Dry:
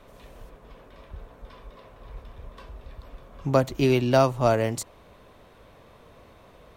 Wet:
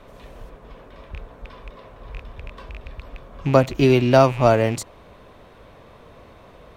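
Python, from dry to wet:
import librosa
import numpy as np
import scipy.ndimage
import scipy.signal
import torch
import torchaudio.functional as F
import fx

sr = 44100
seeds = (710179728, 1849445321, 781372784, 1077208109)

y = fx.rattle_buzz(x, sr, strikes_db=-37.0, level_db=-30.0)
y = fx.high_shelf(y, sr, hz=6300.0, db=-7.5)
y = F.gain(torch.from_numpy(y), 5.5).numpy()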